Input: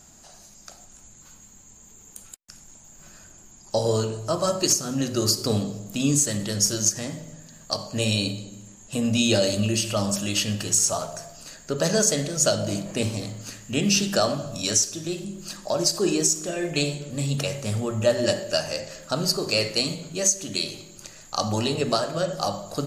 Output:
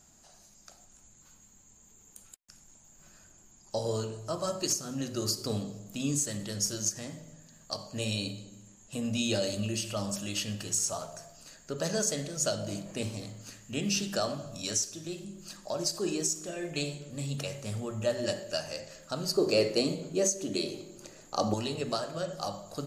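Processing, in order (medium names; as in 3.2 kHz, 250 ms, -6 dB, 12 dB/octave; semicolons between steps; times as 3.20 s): 19.37–21.54 s: peaking EQ 380 Hz +12.5 dB 2 oct; trim -9 dB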